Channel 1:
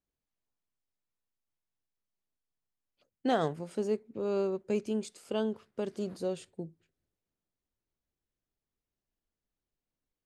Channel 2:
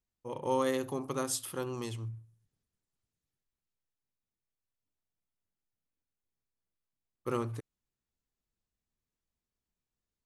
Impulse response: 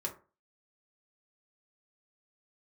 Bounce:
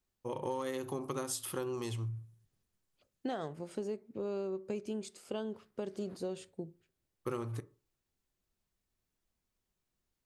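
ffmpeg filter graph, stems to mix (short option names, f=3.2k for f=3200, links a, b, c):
-filter_complex "[0:a]volume=-2.5dB,asplit=2[a][b];[b]volume=-15dB[c];[1:a]asoftclip=type=hard:threshold=-20.5dB,volume=1.5dB,asplit=2[d][e];[e]volume=-10.5dB[f];[2:a]atrim=start_sample=2205[g];[c][f]amix=inputs=2:normalize=0[h];[h][g]afir=irnorm=-1:irlink=0[i];[a][d][i]amix=inputs=3:normalize=0,acompressor=threshold=-34dB:ratio=6"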